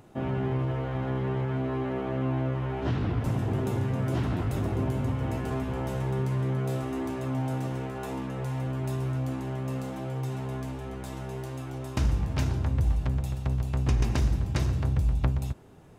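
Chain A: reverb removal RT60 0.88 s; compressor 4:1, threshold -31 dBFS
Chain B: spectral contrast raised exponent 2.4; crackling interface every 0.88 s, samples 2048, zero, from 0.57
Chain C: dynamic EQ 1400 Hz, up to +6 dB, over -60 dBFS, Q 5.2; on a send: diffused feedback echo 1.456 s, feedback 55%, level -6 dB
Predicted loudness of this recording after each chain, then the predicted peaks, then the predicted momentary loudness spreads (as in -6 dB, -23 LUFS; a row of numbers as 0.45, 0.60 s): -36.5, -31.0, -29.0 LUFS; -17.0, -15.5, -13.0 dBFS; 4, 7, 7 LU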